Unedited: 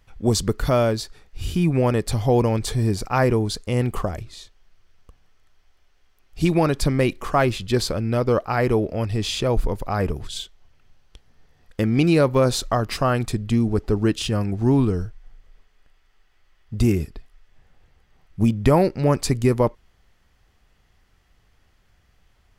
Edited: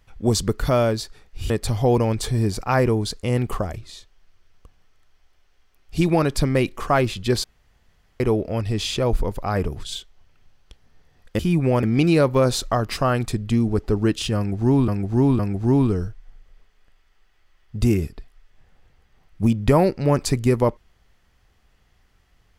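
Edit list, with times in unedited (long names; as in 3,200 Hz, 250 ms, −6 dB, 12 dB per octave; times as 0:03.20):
0:01.50–0:01.94: move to 0:11.83
0:07.88–0:08.64: fill with room tone
0:14.37–0:14.88: repeat, 3 plays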